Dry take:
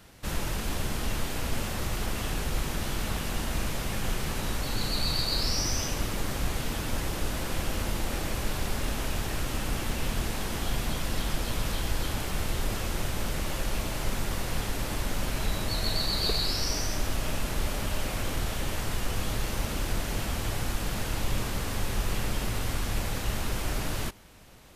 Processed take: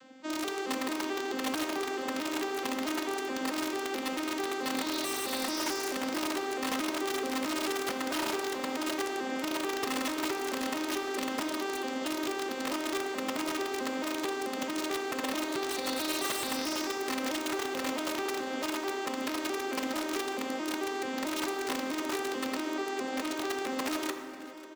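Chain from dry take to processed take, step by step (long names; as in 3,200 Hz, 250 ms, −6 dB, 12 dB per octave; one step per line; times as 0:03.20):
vocoder with an arpeggio as carrier minor triad, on C4, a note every 219 ms
wrap-around overflow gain 27.5 dB
reversed playback
upward compression, threshold −43 dBFS
reversed playback
high-pass filter 180 Hz 12 dB per octave
on a send: single-tap delay 544 ms −19 dB
on the sum: dense smooth reverb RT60 2.4 s, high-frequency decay 0.5×, DRR 6.5 dB
level +1.5 dB
Nellymoser 88 kbit/s 44,100 Hz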